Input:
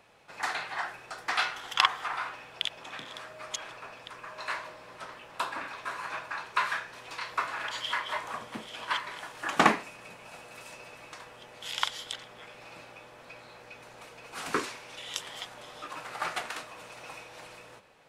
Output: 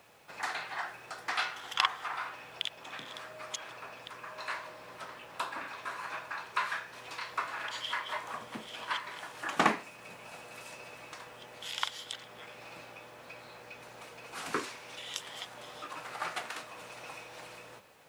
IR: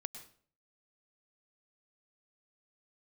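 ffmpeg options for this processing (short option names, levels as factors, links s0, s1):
-filter_complex "[0:a]highpass=63,asplit=2[s0][s1];[s1]acompressor=threshold=0.00708:ratio=6,volume=0.794[s2];[s0][s2]amix=inputs=2:normalize=0,acrusher=bits=9:mix=0:aa=0.000001,volume=0.562"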